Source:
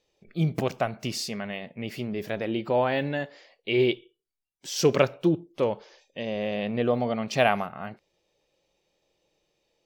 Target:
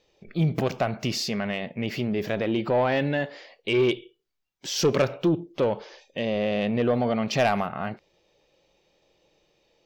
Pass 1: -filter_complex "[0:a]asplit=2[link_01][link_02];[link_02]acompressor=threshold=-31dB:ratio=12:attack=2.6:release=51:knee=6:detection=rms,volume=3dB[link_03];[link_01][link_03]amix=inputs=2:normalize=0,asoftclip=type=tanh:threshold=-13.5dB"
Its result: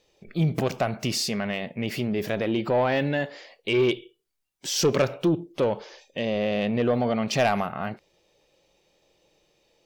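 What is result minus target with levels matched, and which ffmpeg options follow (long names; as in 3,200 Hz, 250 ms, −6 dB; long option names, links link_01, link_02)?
8,000 Hz band +3.5 dB
-filter_complex "[0:a]asplit=2[link_01][link_02];[link_02]acompressor=threshold=-31dB:ratio=12:attack=2.6:release=51:knee=6:detection=rms,lowpass=frequency=9300:width=0.5412,lowpass=frequency=9300:width=1.3066,volume=3dB[link_03];[link_01][link_03]amix=inputs=2:normalize=0,asoftclip=type=tanh:threshold=-13.5dB"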